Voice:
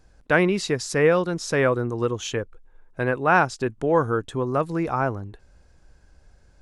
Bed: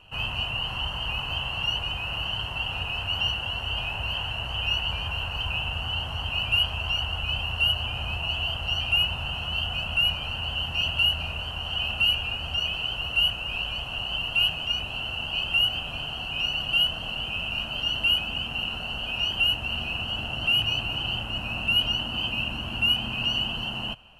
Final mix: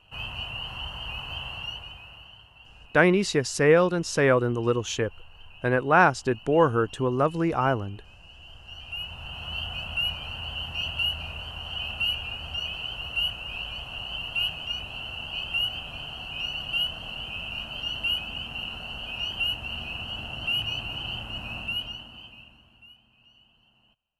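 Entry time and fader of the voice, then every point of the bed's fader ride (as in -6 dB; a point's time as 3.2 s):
2.65 s, 0.0 dB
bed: 1.51 s -5.5 dB
2.49 s -22 dB
8.34 s -22 dB
9.5 s -4.5 dB
21.56 s -4.5 dB
23.05 s -32.5 dB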